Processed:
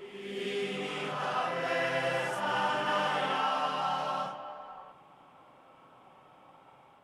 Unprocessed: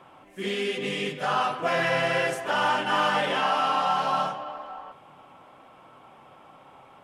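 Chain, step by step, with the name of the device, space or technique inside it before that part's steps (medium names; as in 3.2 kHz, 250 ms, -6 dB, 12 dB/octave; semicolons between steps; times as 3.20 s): reverse reverb (reverse; reverberation RT60 1.8 s, pre-delay 31 ms, DRR 0 dB; reverse); trim -9 dB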